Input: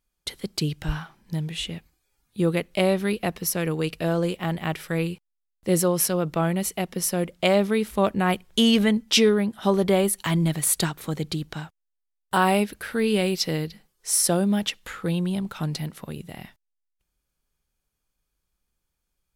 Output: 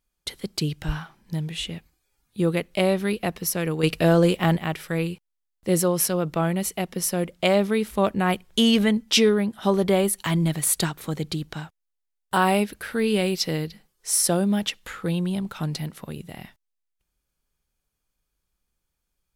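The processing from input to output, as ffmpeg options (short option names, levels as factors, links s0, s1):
-filter_complex "[0:a]asettb=1/sr,asplit=3[s0][s1][s2];[s0]atrim=end=3.834[s3];[s1]atrim=start=3.83:end=4.57,asetpts=PTS-STARTPTS,afade=t=in:d=0.004:c=qsin,afade=t=out:st=0.736:d=0.004:c=qsin,acontrast=72[s4];[s2]atrim=start=4.566[s5];[s3][s4]acrossfade=d=0.004:c1=hsin:c2=qsin[s6];[s6][s5]acrossfade=d=0.004:c1=qsin:c2=hsin"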